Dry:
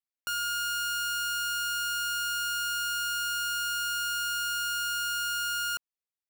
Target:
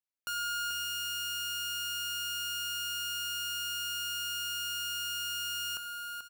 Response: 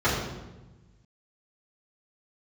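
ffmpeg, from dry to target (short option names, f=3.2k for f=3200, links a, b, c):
-af "aecho=1:1:88|437|570:0.141|0.447|0.178,volume=-4dB"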